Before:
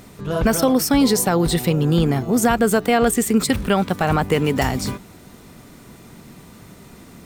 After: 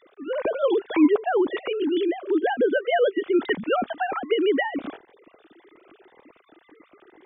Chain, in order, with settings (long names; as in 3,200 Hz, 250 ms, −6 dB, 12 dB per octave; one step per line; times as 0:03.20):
three sine waves on the formant tracks
phaser whose notches keep moving one way rising 1.9 Hz
level −3 dB